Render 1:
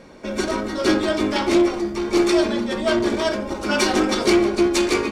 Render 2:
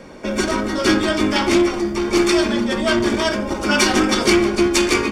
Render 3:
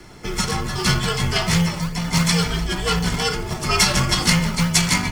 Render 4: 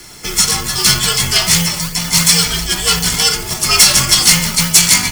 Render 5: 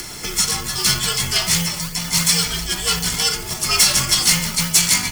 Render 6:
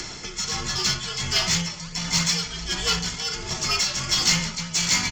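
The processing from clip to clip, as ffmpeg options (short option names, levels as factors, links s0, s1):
-filter_complex "[0:a]bandreject=f=4000:w=9.6,acrossover=split=320|900[s0][s1][s2];[s1]acompressor=threshold=0.0282:ratio=6[s3];[s0][s3][s2]amix=inputs=3:normalize=0,volume=1.88"
-filter_complex "[0:a]highshelf=f=4600:g=10.5,afreqshift=-180,acrossover=split=390[s0][s1];[s0]acrusher=samples=27:mix=1:aa=0.000001:lfo=1:lforange=27:lforate=2.9[s2];[s2][s1]amix=inputs=2:normalize=0,volume=0.668"
-af "crystalizer=i=6.5:c=0,asoftclip=type=tanh:threshold=0.841"
-af "acompressor=mode=upward:threshold=0.158:ratio=2.5,volume=0.501"
-filter_complex "[0:a]aresample=16000,aresample=44100,tremolo=f=1.4:d=0.63,asplit=2[s0][s1];[s1]asoftclip=type=tanh:threshold=0.0944,volume=0.668[s2];[s0][s2]amix=inputs=2:normalize=0,volume=0.562"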